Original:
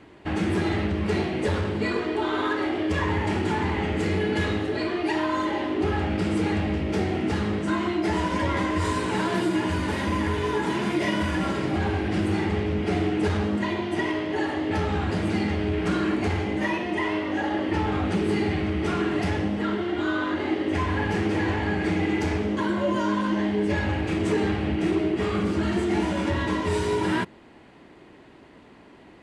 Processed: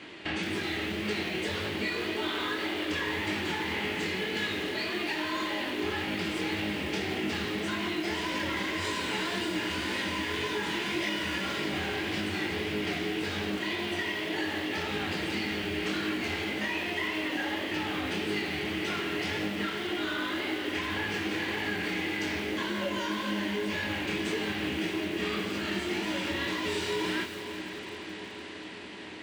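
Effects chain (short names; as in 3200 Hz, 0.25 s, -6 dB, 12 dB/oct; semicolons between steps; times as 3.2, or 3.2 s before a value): weighting filter D; compressor 4:1, threshold -34 dBFS, peak gain reduction 14 dB; chorus 1.8 Hz, delay 19 ms, depth 7.7 ms; on a send: diffused feedback echo 0.475 s, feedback 76%, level -11 dB; on the sum: lo-fi delay 0.172 s, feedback 55%, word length 7-bit, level -13 dB; gain +5 dB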